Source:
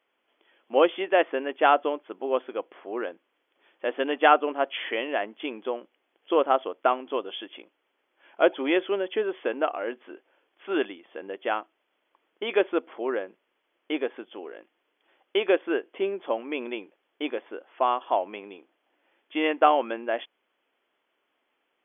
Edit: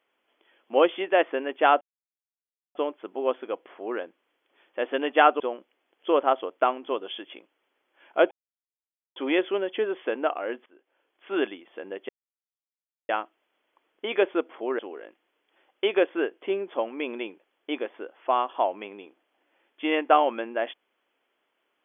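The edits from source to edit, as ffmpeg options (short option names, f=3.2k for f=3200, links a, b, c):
-filter_complex "[0:a]asplit=7[a][b][c][d][e][f][g];[a]atrim=end=1.81,asetpts=PTS-STARTPTS,afade=t=out:st=1.806:d=0.004:c=hsin,apad=pad_dur=0.94[h];[b]atrim=start=1.81:end=4.462,asetpts=PTS-STARTPTS,afade=t=in:d=0.004:c=hsin[i];[c]atrim=start=5.628:end=8.54,asetpts=PTS-STARTPTS,afade=t=out:st=2.908:d=0.004:c=hsin,apad=pad_dur=0.85[j];[d]atrim=start=8.54:end=10.04,asetpts=PTS-STARTPTS,afade=t=in:d=0.004:c=hsin,afade=t=out:st=1.496:d=0.004:c=hsin:silence=0.0794328[k];[e]atrim=start=10.04:end=11.47,asetpts=PTS-STARTPTS,afade=t=in:d=0.67:silence=0.0794328,afade=t=out:st=1.426:d=0.004:c=hsin,apad=pad_dur=1[l];[f]atrim=start=11.47:end=13.172,asetpts=PTS-STARTPTS,afade=t=in:d=0.004:c=hsin[m];[g]atrim=start=14.308[n];[h][i]concat=n=2:v=0:a=1[o];[j][k][l][m]concat=n=4:v=0:a=1[p];[o][p]acrossfade=d=0.004:c1=hsin:c2=hsin[q];[q][n]acrossfade=d=0.004:c1=hsin:c2=hsin"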